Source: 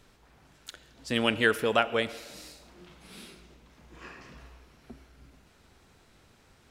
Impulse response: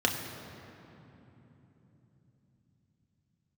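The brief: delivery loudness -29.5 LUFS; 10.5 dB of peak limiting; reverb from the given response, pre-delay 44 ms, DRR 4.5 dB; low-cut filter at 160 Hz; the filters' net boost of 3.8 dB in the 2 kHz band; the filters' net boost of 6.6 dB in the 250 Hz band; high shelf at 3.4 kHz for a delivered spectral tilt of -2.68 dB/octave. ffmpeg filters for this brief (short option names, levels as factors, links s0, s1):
-filter_complex "[0:a]highpass=160,equalizer=f=250:t=o:g=8.5,equalizer=f=2000:t=o:g=4,highshelf=f=3400:g=3,alimiter=limit=0.188:level=0:latency=1,asplit=2[s0][s1];[1:a]atrim=start_sample=2205,adelay=44[s2];[s1][s2]afir=irnorm=-1:irlink=0,volume=0.168[s3];[s0][s3]amix=inputs=2:normalize=0,volume=0.75"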